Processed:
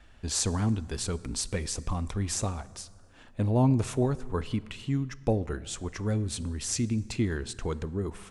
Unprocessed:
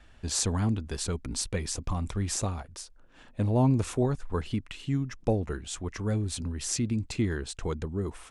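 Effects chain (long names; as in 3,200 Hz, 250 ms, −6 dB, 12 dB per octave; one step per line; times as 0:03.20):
dense smooth reverb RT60 2 s, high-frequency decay 0.6×, DRR 17 dB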